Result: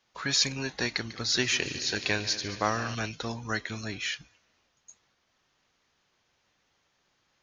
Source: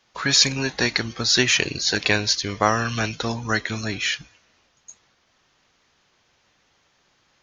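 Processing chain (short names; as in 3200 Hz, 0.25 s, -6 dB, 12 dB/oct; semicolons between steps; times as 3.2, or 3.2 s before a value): 0.91–2.95 multi-head echo 73 ms, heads second and third, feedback 68%, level -16 dB; gain -8.5 dB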